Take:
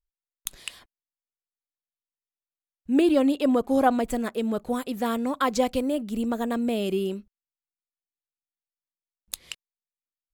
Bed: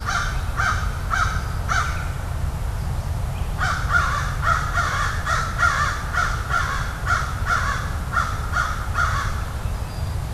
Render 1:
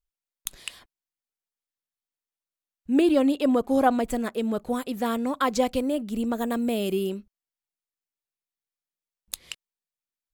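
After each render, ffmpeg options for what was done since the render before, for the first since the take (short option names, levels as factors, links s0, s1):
-filter_complex "[0:a]asettb=1/sr,asplit=3[s0][s1][s2];[s0]atrim=end=6.384[s3];[s1]atrim=start=6.38:end=7.1,asetpts=PTS-STARTPTS,afade=t=in:d=0.004:c=qsin,afade=t=out:st=0.716:d=0.004:c=qsin,highshelf=f=11000:g=10[s4];[s2]atrim=start=7.096[s5];[s3][s4]acrossfade=d=0.004:c1=hsin:c2=qsin[s6];[s6][s5]acrossfade=d=0.004:c1=qsin:c2=hsin"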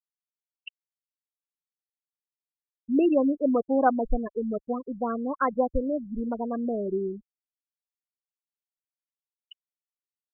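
-af "afftfilt=real='re*gte(hypot(re,im),0.126)':imag='im*gte(hypot(re,im),0.126)':win_size=1024:overlap=0.75,asubboost=boost=9:cutoff=55"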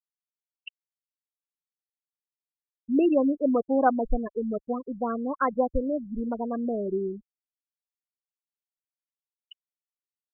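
-af anull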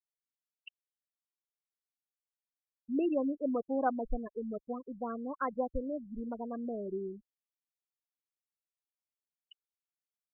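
-af "volume=0.355"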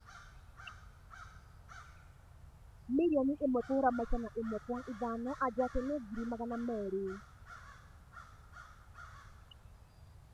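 -filter_complex "[1:a]volume=0.0266[s0];[0:a][s0]amix=inputs=2:normalize=0"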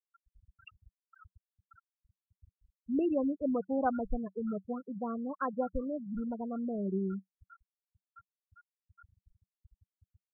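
-af "afftfilt=real='re*gte(hypot(re,im),0.0251)':imag='im*gte(hypot(re,im),0.0251)':win_size=1024:overlap=0.75,equalizer=f=190:t=o:w=0.35:g=12.5"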